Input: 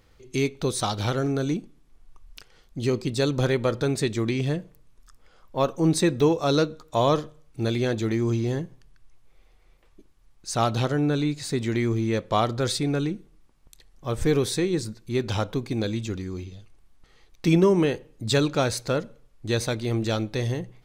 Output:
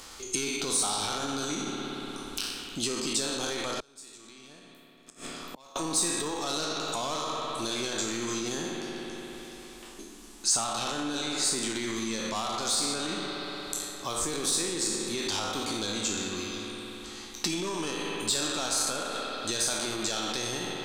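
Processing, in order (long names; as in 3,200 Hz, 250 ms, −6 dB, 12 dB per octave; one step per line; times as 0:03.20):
peak hold with a decay on every bin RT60 0.73 s
mid-hump overdrive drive 17 dB, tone 7,500 Hz, clips at −7.5 dBFS
spring reverb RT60 2.8 s, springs 58 ms, chirp 60 ms, DRR 4.5 dB
brickwall limiter −15 dBFS, peak gain reduction 9.5 dB
0:03.80–0:05.76: gate with flip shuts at −23 dBFS, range −30 dB
downward compressor 1.5 to 1, threshold −31 dBFS, peak gain reduction 4.5 dB
graphic EQ with 10 bands 125 Hz −12 dB, 500 Hz −10 dB, 2,000 Hz −9 dB, 8,000 Hz +9 dB
multiband upward and downward compressor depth 40%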